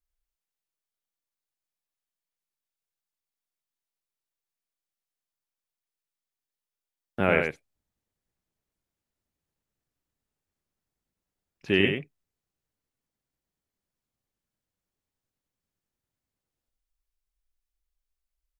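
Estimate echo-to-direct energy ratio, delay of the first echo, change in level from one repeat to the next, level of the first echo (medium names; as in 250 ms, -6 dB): -5.5 dB, 94 ms, no regular repeats, -5.5 dB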